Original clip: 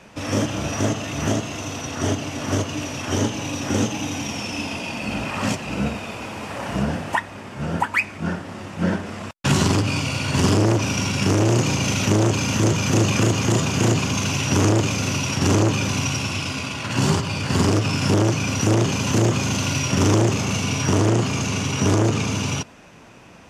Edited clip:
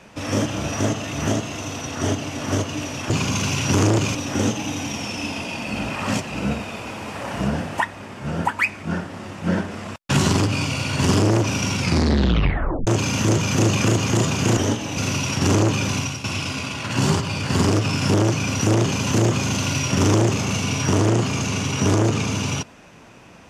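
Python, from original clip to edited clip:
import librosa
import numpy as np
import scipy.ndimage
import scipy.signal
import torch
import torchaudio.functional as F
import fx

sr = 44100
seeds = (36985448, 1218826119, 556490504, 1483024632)

y = fx.edit(x, sr, fx.swap(start_s=3.1, length_s=0.4, other_s=13.92, other_length_s=1.05),
    fx.tape_stop(start_s=11.13, length_s=1.09),
    fx.fade_out_to(start_s=15.95, length_s=0.29, floor_db=-10.5), tone=tone)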